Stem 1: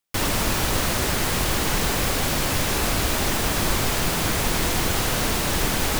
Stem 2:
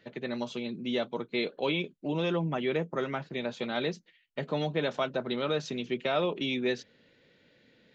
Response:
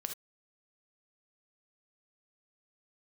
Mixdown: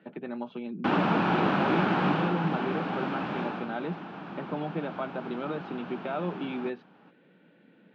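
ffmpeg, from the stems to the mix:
-filter_complex "[0:a]adelay=700,volume=-1dB,afade=t=out:st=2.08:d=0.26:silence=0.473151,afade=t=out:st=3.38:d=0.31:silence=0.334965,asplit=2[a][b];[b]volume=-17.5dB[c];[1:a]acompressor=threshold=-48dB:ratio=1.5,volume=3dB[d];[c]aecho=0:1:410:1[e];[a][d][e]amix=inputs=3:normalize=0,highpass=f=160:w=0.5412,highpass=f=160:w=1.3066,equalizer=f=180:t=q:w=4:g=10,equalizer=f=310:t=q:w=4:g=5,equalizer=f=510:t=q:w=4:g=-3,equalizer=f=810:t=q:w=4:g=6,equalizer=f=1.4k:t=q:w=4:g=4,equalizer=f=2k:t=q:w=4:g=-9,lowpass=f=2.6k:w=0.5412,lowpass=f=2.6k:w=1.3066"

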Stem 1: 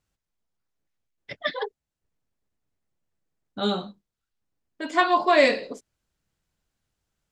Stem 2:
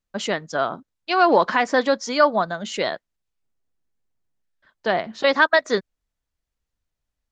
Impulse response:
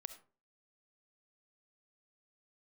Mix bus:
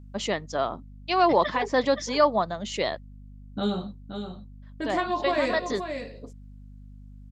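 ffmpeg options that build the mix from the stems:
-filter_complex "[0:a]acompressor=threshold=-28dB:ratio=2,lowshelf=f=340:g=10.5,volume=-3dB,asplit=3[a][b][c];[b]volume=-8dB[d];[1:a]equalizer=f=1.5k:t=o:w=0.25:g=-10,volume=-3dB[e];[c]apad=whole_len=322614[f];[e][f]sidechaincompress=threshold=-35dB:ratio=4:attack=12:release=168[g];[d]aecho=0:1:524:1[h];[a][g][h]amix=inputs=3:normalize=0,aeval=exprs='val(0)+0.00631*(sin(2*PI*50*n/s)+sin(2*PI*2*50*n/s)/2+sin(2*PI*3*50*n/s)/3+sin(2*PI*4*50*n/s)/4+sin(2*PI*5*50*n/s)/5)':c=same"

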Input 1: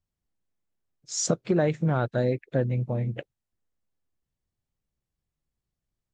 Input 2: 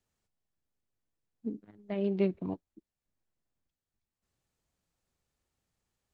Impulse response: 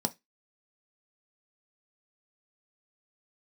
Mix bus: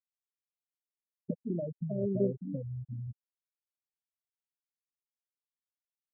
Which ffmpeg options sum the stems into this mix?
-filter_complex "[0:a]lowpass=1.7k,asubboost=boost=7:cutoff=150,acompressor=threshold=-28dB:ratio=16,volume=-5dB,asplit=2[a][b];[b]volume=-16dB[c];[1:a]flanger=delay=8.3:depth=9.3:regen=80:speed=1.1:shape=sinusoidal,volume=2.5dB[d];[2:a]atrim=start_sample=2205[e];[c][e]afir=irnorm=-1:irlink=0[f];[a][d][f]amix=inputs=3:normalize=0,afftfilt=real='re*gte(hypot(re,im),0.0794)':imag='im*gte(hypot(re,im),0.0794)':win_size=1024:overlap=0.75,equalizer=f=750:w=3.4:g=10"

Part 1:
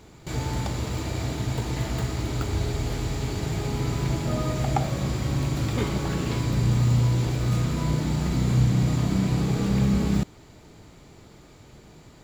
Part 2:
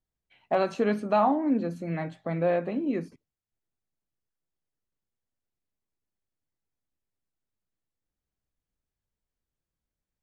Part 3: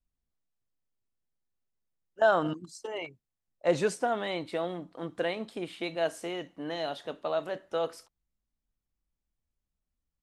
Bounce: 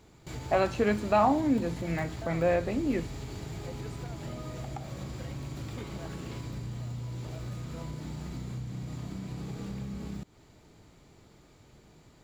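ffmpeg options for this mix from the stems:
-filter_complex "[0:a]volume=-8dB[a];[1:a]equalizer=f=2.2k:w=1.5:g=4.5,volume=-1dB[b];[2:a]volume=-15.5dB[c];[a][c]amix=inputs=2:normalize=0,acompressor=threshold=-35dB:ratio=6,volume=0dB[d];[b][d]amix=inputs=2:normalize=0"

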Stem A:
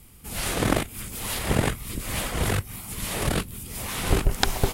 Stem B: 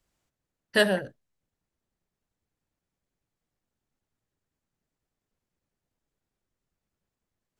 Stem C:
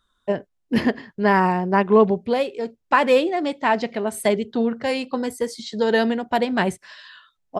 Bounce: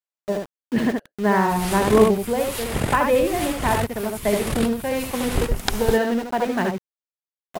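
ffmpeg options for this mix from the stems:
-filter_complex "[0:a]adelay=1250,volume=-1dB[a];[1:a]highpass=630,volume=-18dB[b];[2:a]lowpass=2.5k,lowshelf=f=410:g=2.5,aeval=exprs='val(0)*gte(abs(val(0)),0.0422)':c=same,volume=-3.5dB,asplit=2[c][d];[d]volume=-4dB,aecho=0:1:73:1[e];[a][b][c][e]amix=inputs=4:normalize=0"

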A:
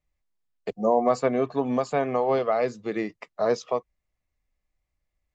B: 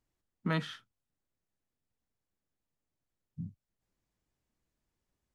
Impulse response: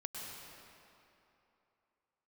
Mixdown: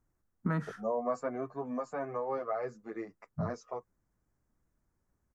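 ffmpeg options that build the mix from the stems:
-filter_complex "[0:a]asplit=2[a][b];[b]adelay=9.3,afreqshift=1.7[c];[a][c]amix=inputs=2:normalize=1,volume=-10dB[d];[1:a]acompressor=threshold=-39dB:ratio=2,lowshelf=f=450:g=8,volume=0dB[e];[d][e]amix=inputs=2:normalize=0,firequalizer=gain_entry='entry(460,0);entry(1400,6);entry(3200,-17);entry(5800,-1)':delay=0.05:min_phase=1"

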